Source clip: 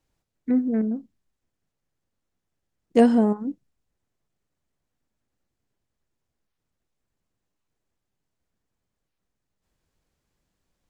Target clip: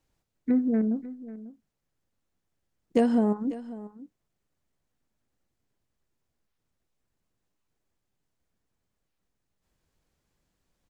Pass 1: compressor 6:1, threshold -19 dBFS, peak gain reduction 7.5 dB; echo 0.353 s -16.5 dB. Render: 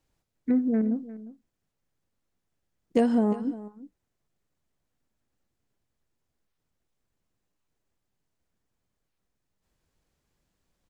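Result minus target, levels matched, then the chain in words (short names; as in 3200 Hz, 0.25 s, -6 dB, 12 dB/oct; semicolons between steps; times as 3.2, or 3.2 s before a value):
echo 0.191 s early
compressor 6:1, threshold -19 dBFS, peak gain reduction 7.5 dB; echo 0.544 s -16.5 dB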